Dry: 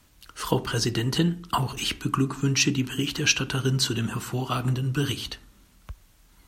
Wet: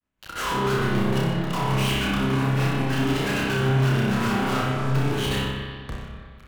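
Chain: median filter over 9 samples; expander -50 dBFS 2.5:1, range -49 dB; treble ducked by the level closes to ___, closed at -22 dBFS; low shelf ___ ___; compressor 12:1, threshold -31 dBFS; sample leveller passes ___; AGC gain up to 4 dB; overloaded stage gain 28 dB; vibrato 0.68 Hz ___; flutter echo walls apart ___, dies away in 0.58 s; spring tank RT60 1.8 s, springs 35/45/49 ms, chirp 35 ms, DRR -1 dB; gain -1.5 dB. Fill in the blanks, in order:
1100 Hz, 110 Hz, -7.5 dB, 5, 17 cents, 5.2 m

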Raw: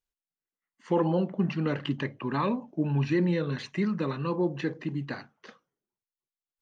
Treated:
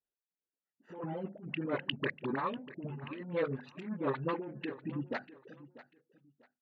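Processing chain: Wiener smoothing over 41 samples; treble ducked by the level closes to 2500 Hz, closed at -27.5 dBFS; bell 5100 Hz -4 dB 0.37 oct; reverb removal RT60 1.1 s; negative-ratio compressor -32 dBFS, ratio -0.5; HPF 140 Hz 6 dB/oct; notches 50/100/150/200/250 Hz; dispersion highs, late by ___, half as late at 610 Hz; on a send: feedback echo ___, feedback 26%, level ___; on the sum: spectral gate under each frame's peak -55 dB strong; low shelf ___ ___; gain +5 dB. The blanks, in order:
41 ms, 0.643 s, -17 dB, 350 Hz, -11.5 dB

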